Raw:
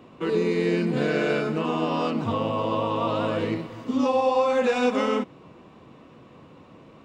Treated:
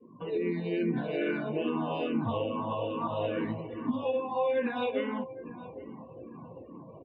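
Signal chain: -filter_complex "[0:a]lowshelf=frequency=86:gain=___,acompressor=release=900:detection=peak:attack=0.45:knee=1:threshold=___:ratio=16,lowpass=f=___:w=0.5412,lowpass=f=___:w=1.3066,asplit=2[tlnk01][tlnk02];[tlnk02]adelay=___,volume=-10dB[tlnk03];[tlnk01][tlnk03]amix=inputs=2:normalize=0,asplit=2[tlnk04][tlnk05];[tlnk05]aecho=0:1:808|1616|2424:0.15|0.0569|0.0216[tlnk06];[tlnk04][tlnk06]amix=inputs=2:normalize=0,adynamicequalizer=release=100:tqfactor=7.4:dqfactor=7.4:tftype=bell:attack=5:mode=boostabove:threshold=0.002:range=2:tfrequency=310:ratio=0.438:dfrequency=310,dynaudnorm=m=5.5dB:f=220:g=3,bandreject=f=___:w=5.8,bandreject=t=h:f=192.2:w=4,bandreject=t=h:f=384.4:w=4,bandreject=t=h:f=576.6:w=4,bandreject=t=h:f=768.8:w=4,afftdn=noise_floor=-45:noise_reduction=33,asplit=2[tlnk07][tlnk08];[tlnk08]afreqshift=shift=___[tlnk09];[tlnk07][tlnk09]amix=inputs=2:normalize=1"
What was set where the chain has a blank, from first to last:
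-4, -26dB, 4.1k, 4.1k, 17, 1.3k, -2.4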